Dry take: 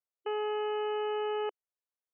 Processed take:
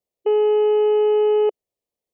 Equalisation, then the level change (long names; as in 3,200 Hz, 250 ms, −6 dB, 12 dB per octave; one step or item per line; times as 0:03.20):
Butterworth band-reject 1,500 Hz, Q 3.2
low shelf with overshoot 770 Hz +9.5 dB, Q 1.5
+5.0 dB